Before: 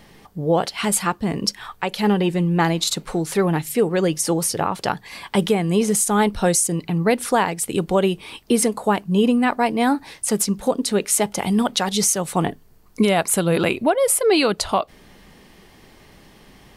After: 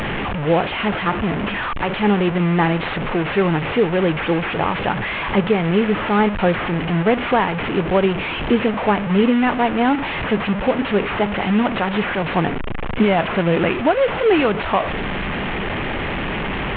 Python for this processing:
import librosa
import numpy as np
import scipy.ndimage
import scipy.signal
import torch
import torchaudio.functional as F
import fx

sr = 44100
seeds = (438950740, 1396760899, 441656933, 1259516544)

y = fx.delta_mod(x, sr, bps=16000, step_db=-18.5)
y = F.gain(torch.from_numpy(y), 1.5).numpy()